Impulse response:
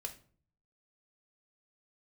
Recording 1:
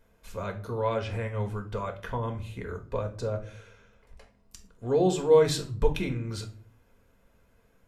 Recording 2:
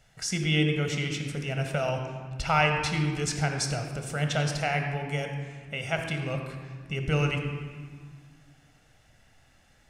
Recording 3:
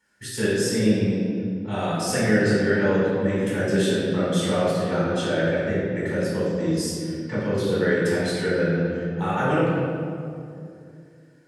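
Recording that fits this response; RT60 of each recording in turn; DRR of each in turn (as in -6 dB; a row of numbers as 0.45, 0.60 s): 1; 0.45, 1.8, 2.5 s; 4.0, 4.0, -8.5 dB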